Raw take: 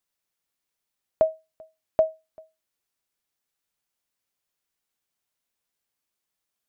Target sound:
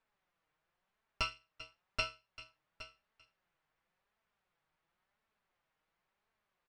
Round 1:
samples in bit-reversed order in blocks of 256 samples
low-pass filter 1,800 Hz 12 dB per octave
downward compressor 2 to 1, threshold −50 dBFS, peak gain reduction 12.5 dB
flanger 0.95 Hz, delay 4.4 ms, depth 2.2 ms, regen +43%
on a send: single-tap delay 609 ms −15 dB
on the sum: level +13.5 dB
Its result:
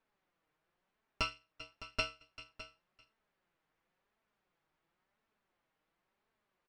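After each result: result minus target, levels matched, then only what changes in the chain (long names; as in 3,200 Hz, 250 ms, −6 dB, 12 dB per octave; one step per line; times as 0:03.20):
250 Hz band +7.0 dB; echo 207 ms early
add after downward compressor: parametric band 300 Hz −7 dB 1.4 octaves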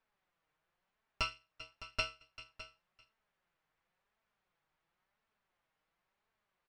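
echo 207 ms early
change: single-tap delay 816 ms −15 dB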